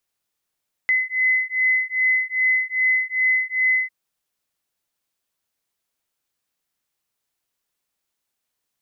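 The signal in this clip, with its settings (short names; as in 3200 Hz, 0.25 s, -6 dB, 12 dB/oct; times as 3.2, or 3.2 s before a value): beating tones 2030 Hz, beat 2.5 Hz, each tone -20.5 dBFS 3.00 s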